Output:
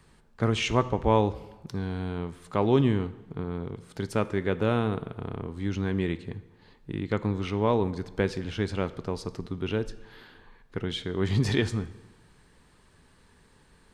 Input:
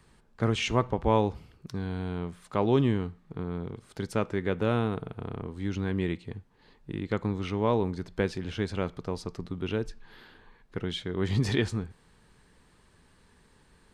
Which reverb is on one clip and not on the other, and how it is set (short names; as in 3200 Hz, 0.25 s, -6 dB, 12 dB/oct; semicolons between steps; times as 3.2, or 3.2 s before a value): plate-style reverb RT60 1.2 s, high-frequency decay 0.8×, DRR 15 dB; gain +1.5 dB